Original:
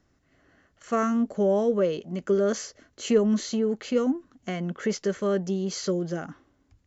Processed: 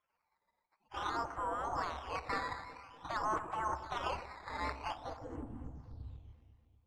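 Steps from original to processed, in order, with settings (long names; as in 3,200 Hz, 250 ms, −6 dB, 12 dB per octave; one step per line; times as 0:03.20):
in parallel at +2.5 dB: compressor whose output falls as the input rises −27 dBFS, ratio −1
on the sum: gate on every frequency bin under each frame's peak −30 dB weak
brickwall limiter −32.5 dBFS, peak gain reduction 7.5 dB
low-pass filter sweep 1,100 Hz → 110 Hz, 0:04.82–0:05.87
delay that swaps between a low-pass and a high-pass 122 ms, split 800 Hz, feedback 72%, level −10 dB
on a send at −16 dB: convolution reverb, pre-delay 53 ms
on the sum: sample-and-hold swept by an LFO 10×, swing 100% 0.5 Hz
low-pass filter 3,700 Hz 12 dB per octave
parametric band 68 Hz +13.5 dB 0.27 octaves
level that may rise only so fast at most 450 dB per second
level +7 dB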